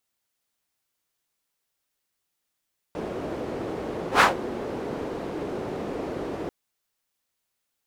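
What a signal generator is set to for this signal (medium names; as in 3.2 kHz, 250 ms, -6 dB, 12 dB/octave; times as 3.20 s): whoosh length 3.54 s, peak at 1.26 s, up 0.11 s, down 0.16 s, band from 390 Hz, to 1.3 kHz, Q 1.5, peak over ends 17 dB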